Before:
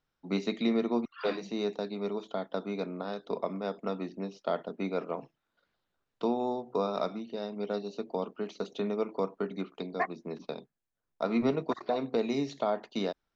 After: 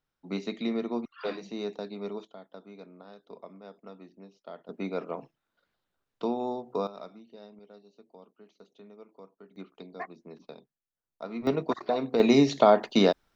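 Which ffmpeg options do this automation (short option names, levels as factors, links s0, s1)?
-af "asetnsamples=n=441:p=0,asendcmd='2.25 volume volume -13dB;4.69 volume volume -0.5dB;6.87 volume volume -12dB;7.59 volume volume -19dB;9.56 volume volume -8dB;11.47 volume volume 2.5dB;12.2 volume volume 11dB',volume=0.75"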